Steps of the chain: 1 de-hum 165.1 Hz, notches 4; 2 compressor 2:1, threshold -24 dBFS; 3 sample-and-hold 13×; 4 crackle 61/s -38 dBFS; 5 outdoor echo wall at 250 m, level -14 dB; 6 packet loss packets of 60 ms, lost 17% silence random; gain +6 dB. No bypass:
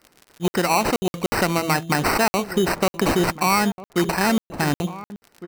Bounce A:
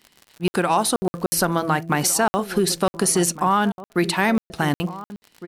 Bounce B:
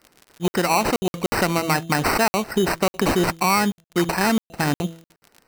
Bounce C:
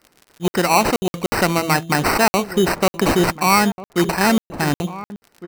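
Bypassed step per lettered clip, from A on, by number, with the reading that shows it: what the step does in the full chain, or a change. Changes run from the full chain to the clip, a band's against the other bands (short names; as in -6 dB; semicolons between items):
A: 3, 8 kHz band +6.5 dB; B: 5, momentary loudness spread change -1 LU; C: 2, loudness change +3.0 LU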